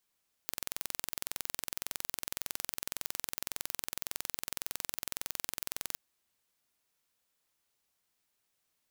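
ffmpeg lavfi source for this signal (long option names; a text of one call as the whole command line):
ffmpeg -f lavfi -i "aevalsrc='0.422*eq(mod(n,2023),0)':duration=5.49:sample_rate=44100" out.wav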